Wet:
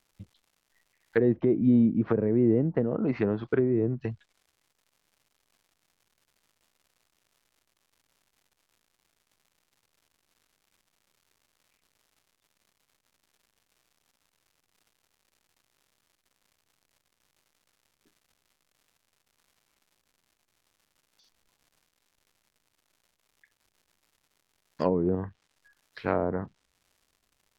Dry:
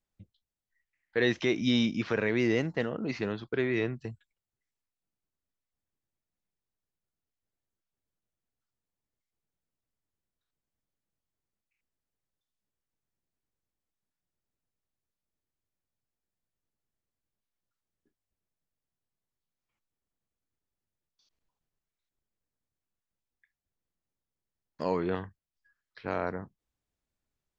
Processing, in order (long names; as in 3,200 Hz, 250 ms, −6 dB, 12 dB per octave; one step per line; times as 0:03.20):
surface crackle 250 per second −60 dBFS
treble cut that deepens with the level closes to 410 Hz, closed at −25.5 dBFS
level +6.5 dB